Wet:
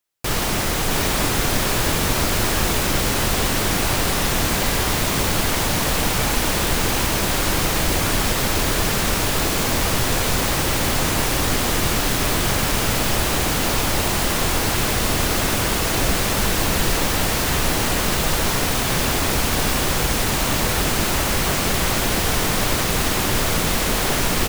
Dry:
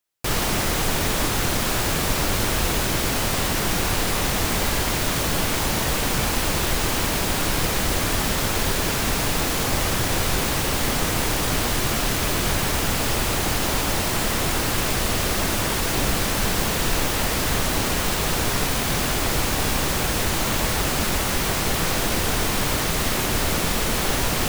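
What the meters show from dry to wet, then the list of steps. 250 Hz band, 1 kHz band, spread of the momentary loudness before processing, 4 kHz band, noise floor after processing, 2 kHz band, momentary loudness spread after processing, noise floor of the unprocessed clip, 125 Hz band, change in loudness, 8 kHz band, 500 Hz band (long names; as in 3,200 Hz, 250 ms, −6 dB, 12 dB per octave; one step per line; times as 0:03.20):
+2.5 dB, +2.5 dB, 0 LU, +2.5 dB, −21 dBFS, +2.5 dB, 0 LU, −24 dBFS, +2.5 dB, +2.5 dB, +2.5 dB, +2.5 dB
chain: on a send: single-tap delay 667 ms −4 dB
on the sum: level +1 dB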